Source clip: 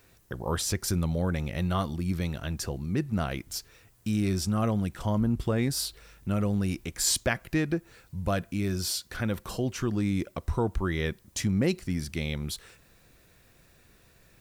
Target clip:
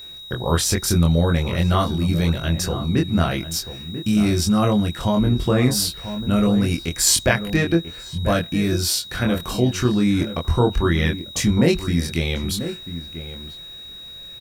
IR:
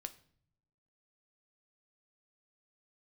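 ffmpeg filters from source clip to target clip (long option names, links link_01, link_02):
-filter_complex "[0:a]asplit=2[link_01][link_02];[link_02]adelay=24,volume=-3dB[link_03];[link_01][link_03]amix=inputs=2:normalize=0,asplit=2[link_04][link_05];[link_05]adelay=991.3,volume=-11dB,highshelf=frequency=4000:gain=-22.3[link_06];[link_04][link_06]amix=inputs=2:normalize=0,aeval=exprs='val(0)+0.00708*sin(2*PI*3800*n/s)':channel_layout=same,volume=7.5dB"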